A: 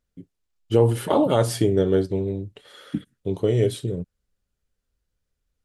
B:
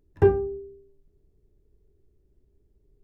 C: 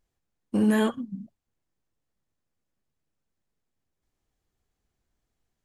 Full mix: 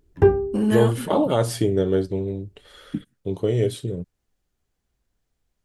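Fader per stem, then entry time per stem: -1.0, +3.0, +0.5 dB; 0.00, 0.00, 0.00 s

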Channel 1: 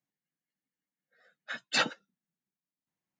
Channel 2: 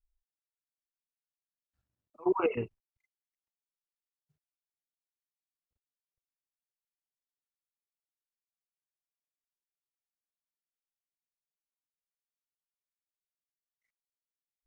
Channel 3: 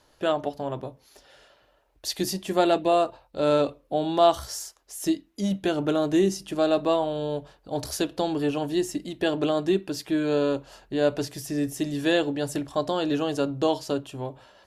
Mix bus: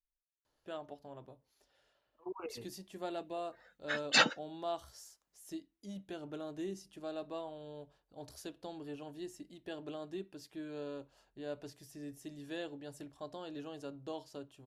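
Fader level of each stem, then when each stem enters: +1.5, -15.5, -19.5 dB; 2.40, 0.00, 0.45 s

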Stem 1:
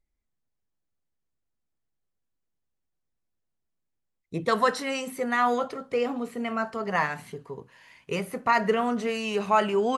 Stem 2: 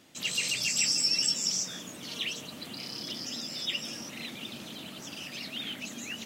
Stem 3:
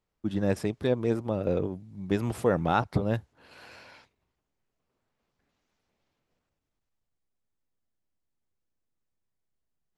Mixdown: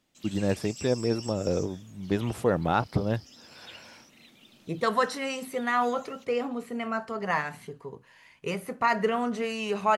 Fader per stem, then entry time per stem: -2.0, -15.5, 0.0 dB; 0.35, 0.00, 0.00 s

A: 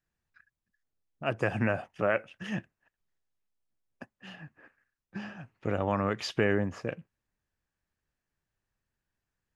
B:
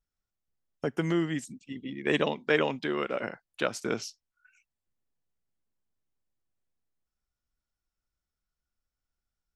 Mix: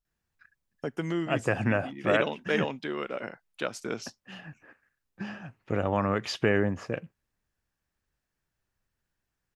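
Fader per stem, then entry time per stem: +2.0, -3.0 dB; 0.05, 0.00 s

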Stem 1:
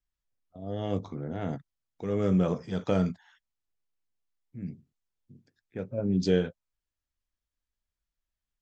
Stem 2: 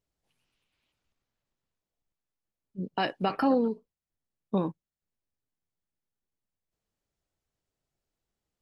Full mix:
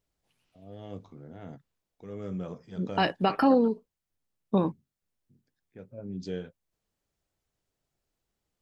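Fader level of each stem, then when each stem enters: -11.0, +3.0 dB; 0.00, 0.00 s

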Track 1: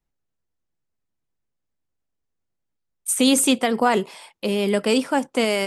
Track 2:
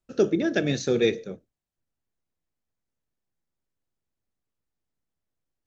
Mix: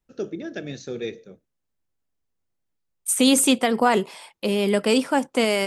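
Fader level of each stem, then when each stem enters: 0.0, -8.5 dB; 0.00, 0.00 s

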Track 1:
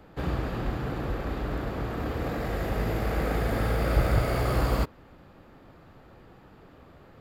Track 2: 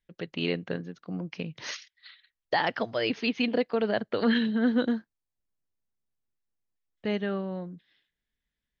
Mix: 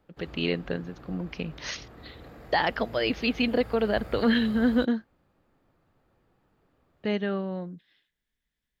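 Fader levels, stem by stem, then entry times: -16.5, +1.5 dB; 0.00, 0.00 s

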